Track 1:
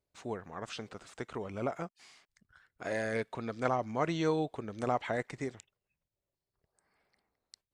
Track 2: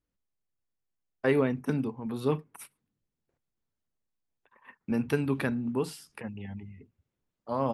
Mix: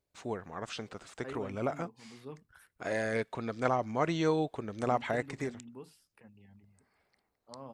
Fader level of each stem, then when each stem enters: +1.5, −18.5 decibels; 0.00, 0.00 seconds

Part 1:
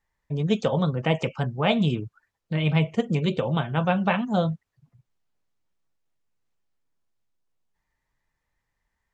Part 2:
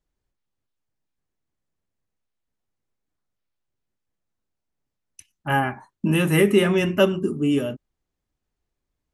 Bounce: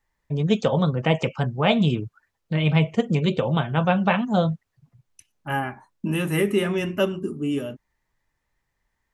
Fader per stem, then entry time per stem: +2.5, −4.5 decibels; 0.00, 0.00 seconds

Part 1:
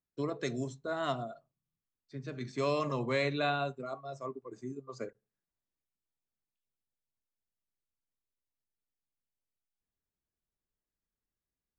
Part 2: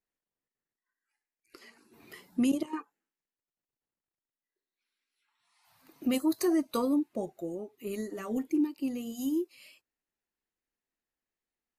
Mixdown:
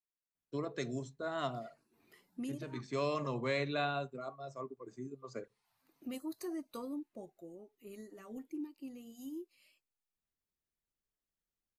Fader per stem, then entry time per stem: −3.5, −14.0 decibels; 0.35, 0.00 seconds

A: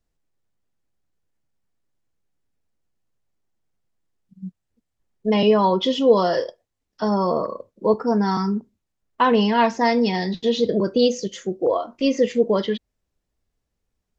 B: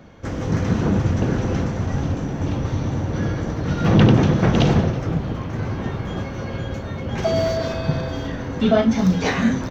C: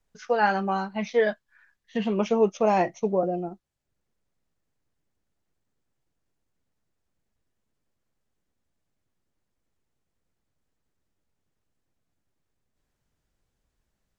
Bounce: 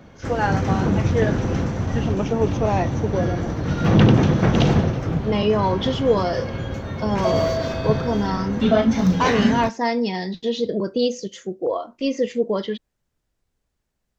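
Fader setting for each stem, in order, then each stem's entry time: −3.0, −0.5, −0.5 decibels; 0.00, 0.00, 0.00 seconds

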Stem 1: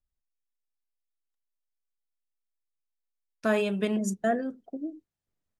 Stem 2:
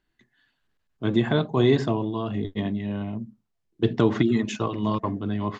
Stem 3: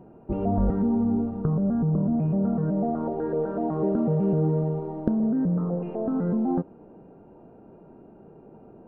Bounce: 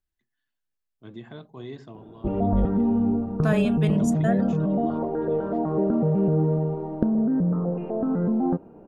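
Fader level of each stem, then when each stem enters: −0.5, −19.0, +1.5 decibels; 0.00, 0.00, 1.95 seconds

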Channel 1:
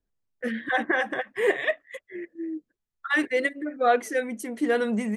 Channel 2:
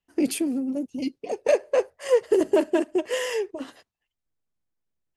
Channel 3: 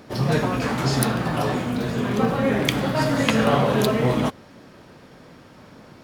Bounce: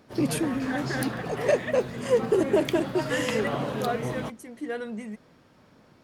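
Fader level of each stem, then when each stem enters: −9.0, −2.5, −11.0 decibels; 0.00, 0.00, 0.00 seconds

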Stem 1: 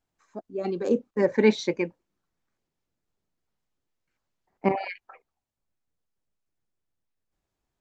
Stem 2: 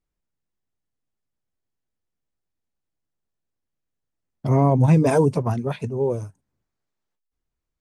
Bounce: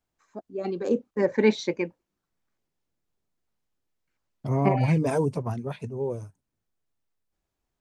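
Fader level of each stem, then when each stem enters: −1.0, −7.0 decibels; 0.00, 0.00 seconds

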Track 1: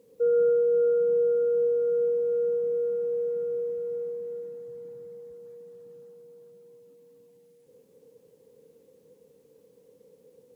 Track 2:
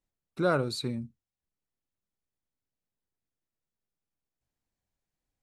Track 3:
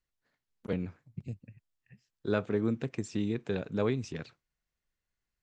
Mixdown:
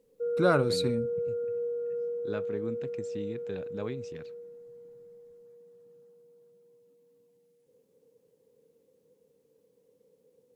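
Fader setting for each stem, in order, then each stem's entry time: −8.5, +2.0, −7.0 decibels; 0.00, 0.00, 0.00 seconds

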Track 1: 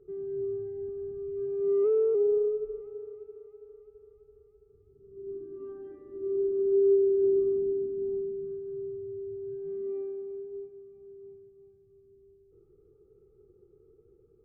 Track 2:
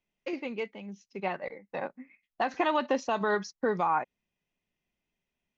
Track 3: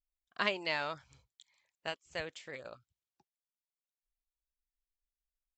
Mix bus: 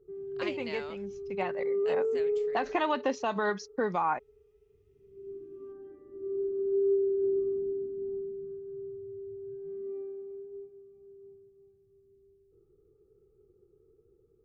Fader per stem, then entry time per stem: −4.0, −1.5, −8.0 decibels; 0.00, 0.15, 0.00 seconds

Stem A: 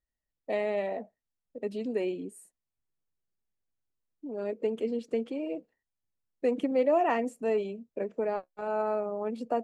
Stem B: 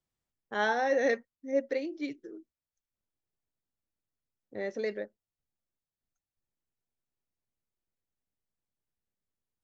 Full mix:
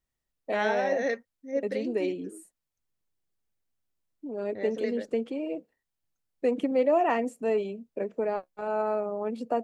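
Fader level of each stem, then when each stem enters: +1.5, −1.5 decibels; 0.00, 0.00 seconds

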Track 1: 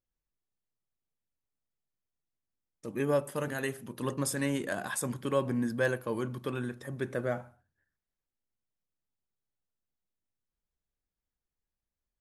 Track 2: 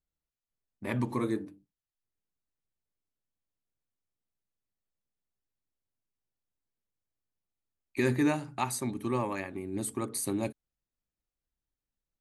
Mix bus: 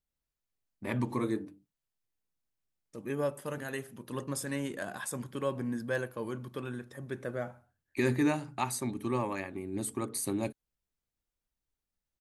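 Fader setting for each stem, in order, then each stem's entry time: −4.0, −1.0 decibels; 0.10, 0.00 seconds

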